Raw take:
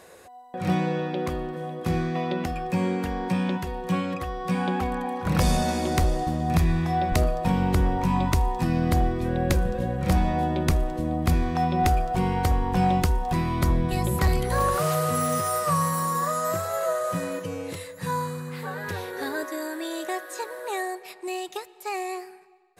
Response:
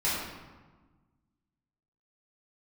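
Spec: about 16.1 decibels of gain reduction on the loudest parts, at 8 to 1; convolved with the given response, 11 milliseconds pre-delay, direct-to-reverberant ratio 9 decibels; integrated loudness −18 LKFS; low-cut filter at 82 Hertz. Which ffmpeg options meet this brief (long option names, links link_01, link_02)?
-filter_complex "[0:a]highpass=82,acompressor=threshold=-36dB:ratio=8,asplit=2[link_01][link_02];[1:a]atrim=start_sample=2205,adelay=11[link_03];[link_02][link_03]afir=irnorm=-1:irlink=0,volume=-19.5dB[link_04];[link_01][link_04]amix=inputs=2:normalize=0,volume=20.5dB"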